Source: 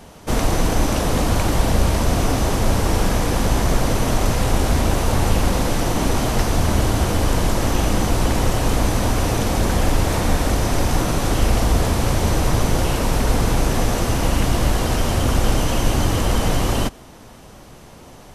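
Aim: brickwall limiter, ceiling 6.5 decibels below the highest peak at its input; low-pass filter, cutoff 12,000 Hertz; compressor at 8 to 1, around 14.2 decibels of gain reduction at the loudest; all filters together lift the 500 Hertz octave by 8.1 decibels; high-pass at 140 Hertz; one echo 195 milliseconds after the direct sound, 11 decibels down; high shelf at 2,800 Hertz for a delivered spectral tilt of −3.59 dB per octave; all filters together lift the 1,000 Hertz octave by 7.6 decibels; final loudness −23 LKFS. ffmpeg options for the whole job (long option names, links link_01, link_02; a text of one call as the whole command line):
ffmpeg -i in.wav -af "highpass=140,lowpass=12000,equalizer=frequency=500:width_type=o:gain=8,equalizer=frequency=1000:width_type=o:gain=6,highshelf=frequency=2800:gain=7,acompressor=threshold=-28dB:ratio=8,alimiter=limit=-23.5dB:level=0:latency=1,aecho=1:1:195:0.282,volume=9.5dB" out.wav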